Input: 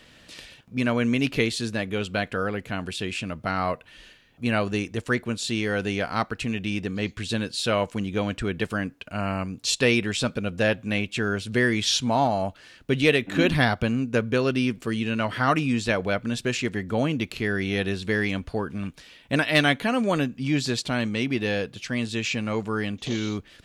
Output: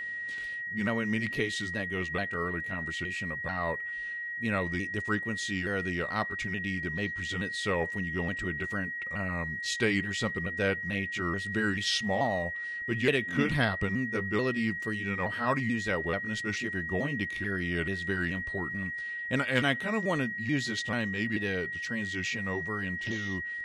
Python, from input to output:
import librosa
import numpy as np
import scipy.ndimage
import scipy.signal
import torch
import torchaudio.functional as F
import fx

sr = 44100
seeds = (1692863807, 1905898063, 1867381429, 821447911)

y = fx.pitch_ramps(x, sr, semitones=-3.5, every_ms=436)
y = y + 10.0 ** (-28.0 / 20.0) * np.sin(2.0 * np.pi * 1900.0 * np.arange(len(y)) / sr)
y = y * 10.0 ** (-6.0 / 20.0)